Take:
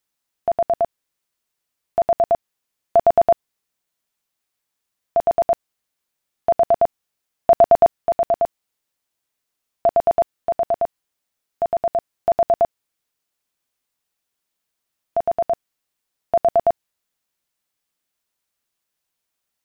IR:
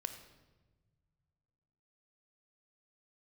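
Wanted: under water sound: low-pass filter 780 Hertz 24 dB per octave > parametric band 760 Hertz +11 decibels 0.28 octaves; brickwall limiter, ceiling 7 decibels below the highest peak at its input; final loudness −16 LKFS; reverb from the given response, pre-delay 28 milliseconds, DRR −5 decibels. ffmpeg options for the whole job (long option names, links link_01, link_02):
-filter_complex "[0:a]alimiter=limit=-12.5dB:level=0:latency=1,asplit=2[link_01][link_02];[1:a]atrim=start_sample=2205,adelay=28[link_03];[link_02][link_03]afir=irnorm=-1:irlink=0,volume=6.5dB[link_04];[link_01][link_04]amix=inputs=2:normalize=0,lowpass=frequency=780:width=0.5412,lowpass=frequency=780:width=1.3066,equalizer=frequency=760:width_type=o:width=0.28:gain=11,volume=-1.5dB"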